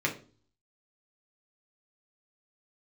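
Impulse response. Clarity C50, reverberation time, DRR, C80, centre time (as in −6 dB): 12.0 dB, 0.40 s, −1.0 dB, 17.5 dB, 13 ms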